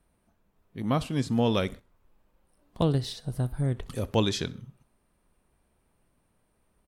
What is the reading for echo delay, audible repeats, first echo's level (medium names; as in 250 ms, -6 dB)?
64 ms, 2, -22.0 dB